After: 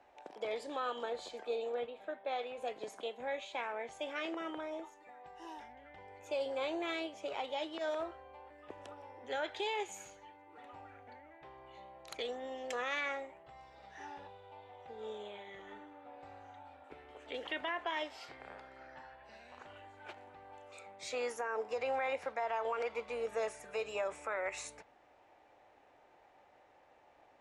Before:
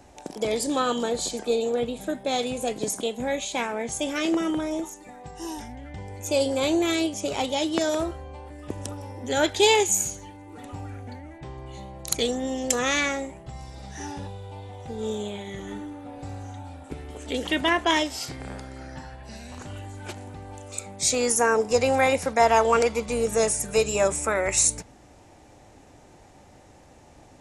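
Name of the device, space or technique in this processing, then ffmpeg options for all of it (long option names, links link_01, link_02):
DJ mixer with the lows and highs turned down: -filter_complex "[0:a]acrossover=split=440 3400:gain=0.1 1 0.0708[link_01][link_02][link_03];[link_01][link_02][link_03]amix=inputs=3:normalize=0,alimiter=limit=-19.5dB:level=0:latency=1:release=67,asettb=1/sr,asplit=3[link_04][link_05][link_06];[link_04]atrim=end=1.864[link_07];[link_05]atrim=start=1.86:end=2.58,asetpts=PTS-STARTPTS,afade=type=in:duration=0.004:curve=qsin,afade=type=out:start_time=0.716:duration=0.004:curve=qsin,bass=frequency=250:gain=-8,treble=frequency=4000:gain=-10[link_08];[link_06]atrim=start=2.576[link_09];[link_07][link_08]acrossfade=duration=0.004:curve1=hsin:curve2=qsin[link_10];[link_10][link_09]acrossfade=duration=0.004:curve1=qsin:curve2=hsin,volume=-8dB"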